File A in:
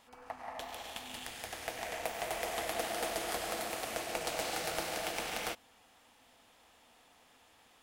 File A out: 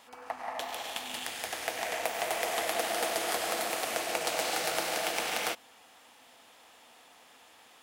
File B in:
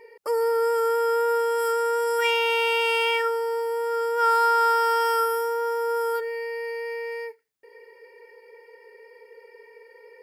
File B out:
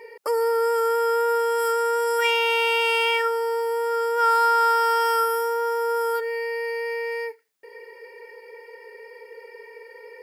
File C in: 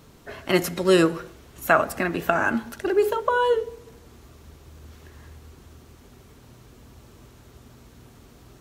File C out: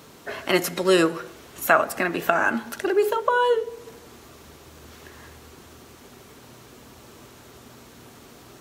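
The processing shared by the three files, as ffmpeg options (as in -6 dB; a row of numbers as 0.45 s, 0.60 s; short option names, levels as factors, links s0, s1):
-filter_complex "[0:a]highpass=f=320:p=1,asplit=2[s0][s1];[s1]acompressor=threshold=0.0178:ratio=6,volume=1.26[s2];[s0][s2]amix=inputs=2:normalize=0"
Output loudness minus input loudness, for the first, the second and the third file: +5.5 LU, +1.5 LU, 0.0 LU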